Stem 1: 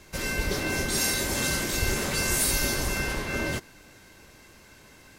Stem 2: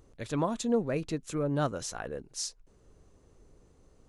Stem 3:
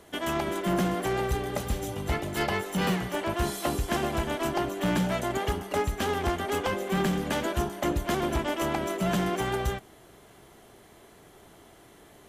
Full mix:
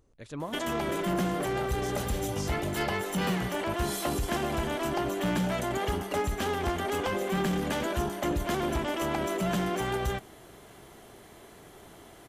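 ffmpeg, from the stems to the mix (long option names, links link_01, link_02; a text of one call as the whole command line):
ffmpeg -i stem1.wav -i stem2.wav -i stem3.wav -filter_complex "[1:a]volume=-7dB[link_01];[2:a]adelay=400,volume=2.5dB[link_02];[link_01][link_02]amix=inputs=2:normalize=0,alimiter=limit=-22.5dB:level=0:latency=1:release=10" out.wav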